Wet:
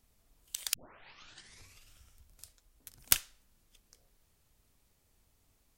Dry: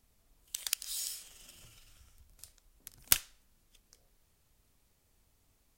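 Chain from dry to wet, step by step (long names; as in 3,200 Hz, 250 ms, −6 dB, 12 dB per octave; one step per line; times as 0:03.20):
0:00.74: tape start 1.14 s
0:02.44–0:02.91: notch comb filter 190 Hz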